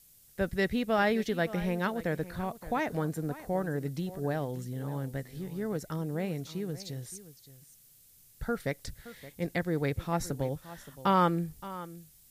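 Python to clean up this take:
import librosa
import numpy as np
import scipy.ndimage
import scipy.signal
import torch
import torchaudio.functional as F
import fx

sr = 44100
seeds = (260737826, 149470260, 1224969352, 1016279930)

y = fx.noise_reduce(x, sr, print_start_s=7.88, print_end_s=8.38, reduce_db=18.0)
y = fx.fix_echo_inverse(y, sr, delay_ms=571, level_db=-16.0)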